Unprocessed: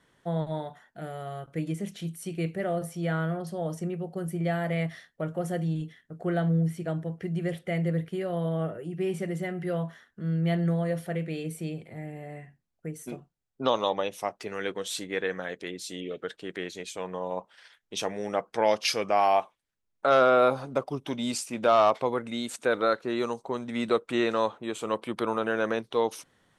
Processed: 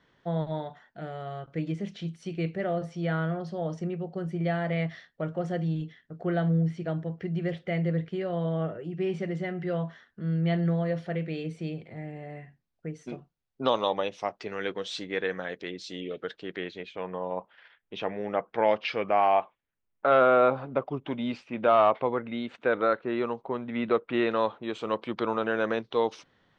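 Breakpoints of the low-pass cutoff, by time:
low-pass 24 dB/octave
16.39 s 5.3 kHz
16.96 s 3 kHz
24.05 s 3 kHz
24.72 s 4.9 kHz

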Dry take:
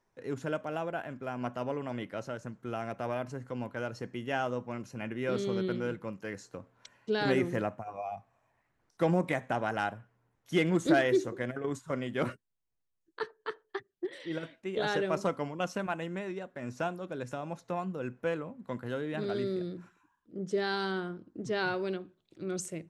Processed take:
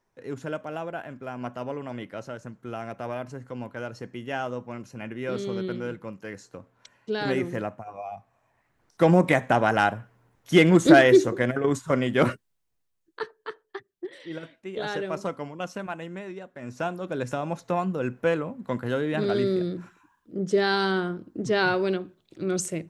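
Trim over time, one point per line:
8.12 s +1.5 dB
9.30 s +10.5 dB
12.31 s +10.5 dB
13.62 s 0 dB
16.56 s 0 dB
17.17 s +8.5 dB

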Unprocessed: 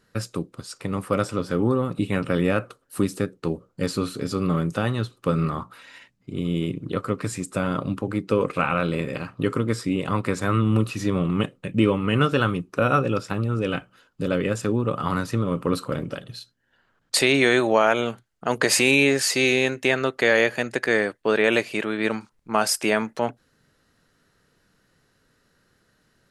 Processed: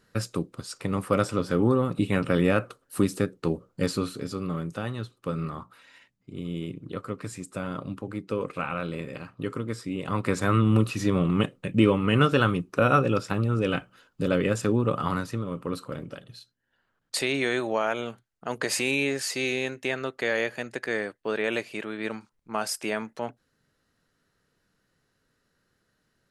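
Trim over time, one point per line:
3.83 s -0.5 dB
4.45 s -8 dB
9.91 s -8 dB
10.33 s -0.5 dB
14.96 s -0.5 dB
15.45 s -8 dB

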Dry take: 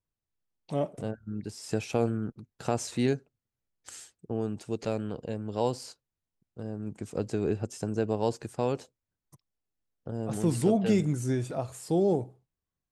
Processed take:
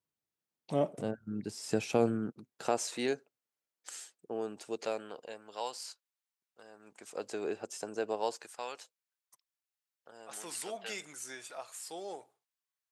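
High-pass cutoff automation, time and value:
2.12 s 160 Hz
2.87 s 440 Hz
4.71 s 440 Hz
5.69 s 1.1 kHz
6.70 s 1.1 kHz
7.38 s 530 Hz
8.14 s 530 Hz
8.65 s 1.2 kHz

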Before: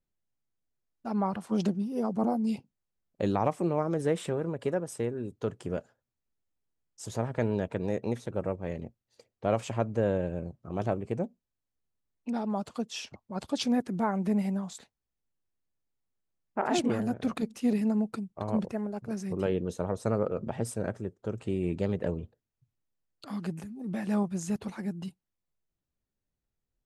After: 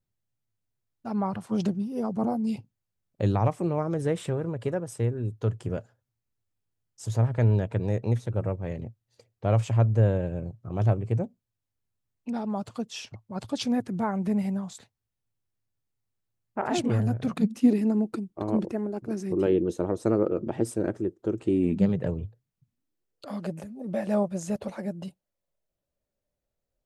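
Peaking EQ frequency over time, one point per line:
peaking EQ +15 dB 0.51 oct
17.17 s 110 Hz
17.73 s 330 Hz
21.49 s 330 Hz
22.23 s 96 Hz
23.30 s 580 Hz

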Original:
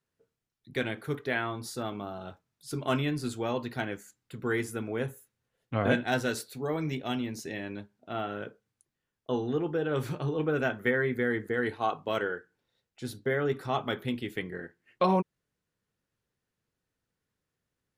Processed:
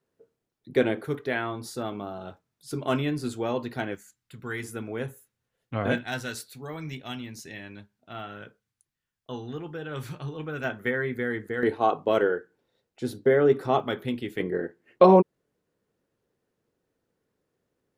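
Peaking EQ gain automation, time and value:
peaking EQ 420 Hz 2.3 oct
+11.5 dB
from 1.05 s +3.5 dB
from 3.95 s -7.5 dB
from 4.63 s -0.5 dB
from 5.98 s -8 dB
from 10.64 s -1 dB
from 11.63 s +10 dB
from 13.80 s +3.5 dB
from 14.40 s +13 dB

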